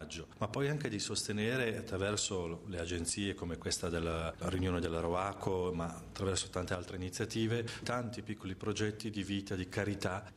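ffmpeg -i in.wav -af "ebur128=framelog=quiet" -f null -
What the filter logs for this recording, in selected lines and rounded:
Integrated loudness:
  I:         -37.1 LUFS
  Threshold: -47.1 LUFS
Loudness range:
  LRA:         1.9 LU
  Threshold: -57.0 LUFS
  LRA low:   -38.2 LUFS
  LRA high:  -36.3 LUFS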